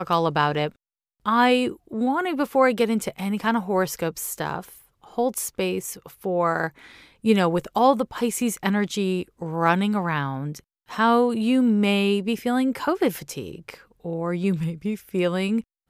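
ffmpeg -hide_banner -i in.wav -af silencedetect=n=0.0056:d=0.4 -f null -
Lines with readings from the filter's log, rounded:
silence_start: 0.72
silence_end: 1.26 | silence_duration: 0.54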